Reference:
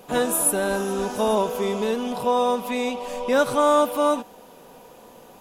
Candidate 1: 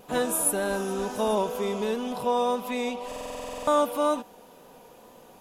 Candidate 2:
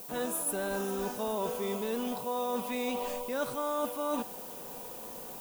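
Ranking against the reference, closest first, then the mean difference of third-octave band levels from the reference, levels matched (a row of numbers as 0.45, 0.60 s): 1, 2; 1.5, 7.0 dB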